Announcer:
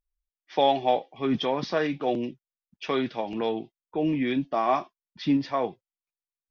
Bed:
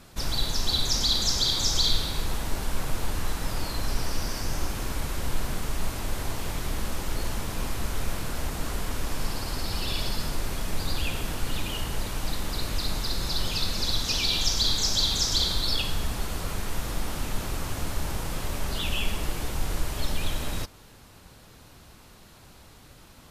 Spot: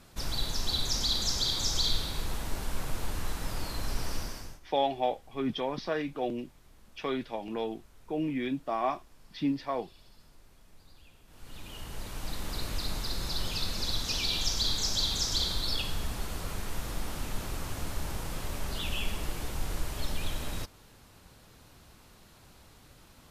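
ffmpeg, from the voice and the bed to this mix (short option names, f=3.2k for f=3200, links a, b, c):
-filter_complex "[0:a]adelay=4150,volume=-6dB[a];[1:a]volume=18.5dB,afade=t=out:st=4.15:d=0.45:silence=0.0668344,afade=t=in:st=11.27:d=1.28:silence=0.0668344[b];[a][b]amix=inputs=2:normalize=0"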